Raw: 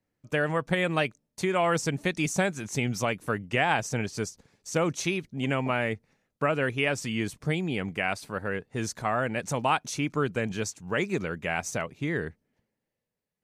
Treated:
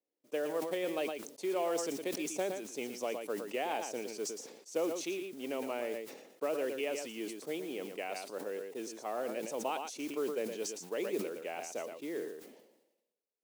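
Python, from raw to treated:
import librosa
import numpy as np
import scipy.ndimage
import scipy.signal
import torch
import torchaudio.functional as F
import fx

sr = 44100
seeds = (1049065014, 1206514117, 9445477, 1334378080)

y = fx.curve_eq(x, sr, hz=(510.0, 1600.0, 2900.0), db=(0, -15, -7))
y = fx.mod_noise(y, sr, seeds[0], snr_db=23)
y = scipy.signal.sosfilt(scipy.signal.butter(4, 320.0, 'highpass', fs=sr, output='sos'), y)
y = y + 10.0 ** (-10.0 / 20.0) * np.pad(y, (int(115 * sr / 1000.0), 0))[:len(y)]
y = fx.sustainer(y, sr, db_per_s=58.0)
y = y * 10.0 ** (-5.0 / 20.0)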